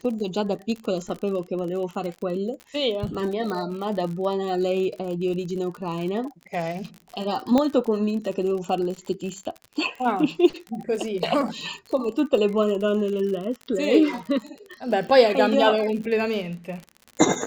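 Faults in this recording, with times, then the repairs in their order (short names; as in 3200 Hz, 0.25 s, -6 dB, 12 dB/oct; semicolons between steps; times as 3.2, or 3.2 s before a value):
crackle 52/s -31 dBFS
3.5 pop -18 dBFS
7.58 pop -10 dBFS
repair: de-click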